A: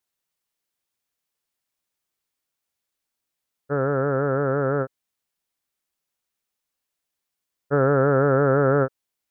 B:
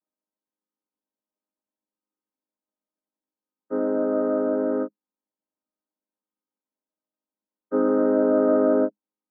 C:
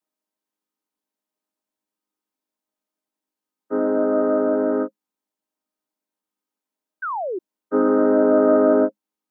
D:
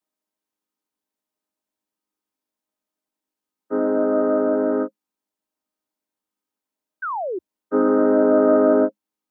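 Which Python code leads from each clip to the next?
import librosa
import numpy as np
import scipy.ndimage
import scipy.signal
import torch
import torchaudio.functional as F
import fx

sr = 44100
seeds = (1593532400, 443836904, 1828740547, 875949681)

y1 = fx.chord_vocoder(x, sr, chord='major triad', root=56)
y1 = scipy.signal.sosfilt(scipy.signal.butter(4, 1300.0, 'lowpass', fs=sr, output='sos'), y1)
y2 = fx.low_shelf(y1, sr, hz=180.0, db=-9.0)
y2 = fx.notch(y2, sr, hz=540.0, q=12.0)
y2 = fx.spec_paint(y2, sr, seeds[0], shape='fall', start_s=7.02, length_s=0.37, low_hz=340.0, high_hz=1600.0, level_db=-32.0)
y2 = y2 * librosa.db_to_amplitude(6.0)
y3 = fx.peak_eq(y2, sr, hz=77.0, db=5.0, octaves=0.78)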